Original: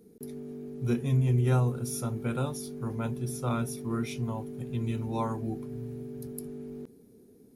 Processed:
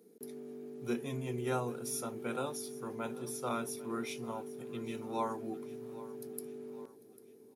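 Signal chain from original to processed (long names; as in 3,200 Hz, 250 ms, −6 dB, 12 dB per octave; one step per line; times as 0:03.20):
high-pass filter 310 Hz 12 dB per octave
repeating echo 797 ms, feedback 47%, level −18 dB
level −2 dB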